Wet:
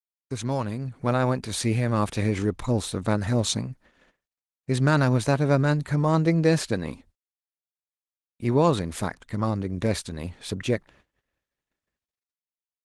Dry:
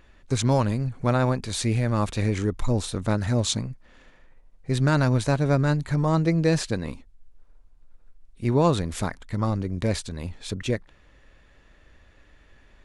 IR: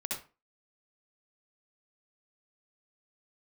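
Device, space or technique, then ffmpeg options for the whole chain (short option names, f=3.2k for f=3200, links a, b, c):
video call: -af "highpass=f=110:p=1,dynaudnorm=f=180:g=11:m=8dB,agate=range=-44dB:threshold=-47dB:ratio=16:detection=peak,volume=-5.5dB" -ar 48000 -c:a libopus -b:a 24k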